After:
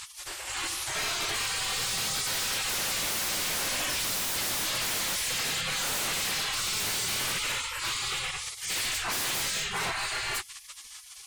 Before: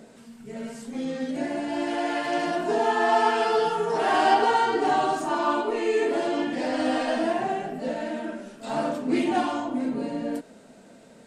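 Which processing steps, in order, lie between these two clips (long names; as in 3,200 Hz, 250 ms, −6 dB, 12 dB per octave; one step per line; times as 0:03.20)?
gate on every frequency bin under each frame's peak −30 dB weak
sine wavefolder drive 19 dB, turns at −27 dBFS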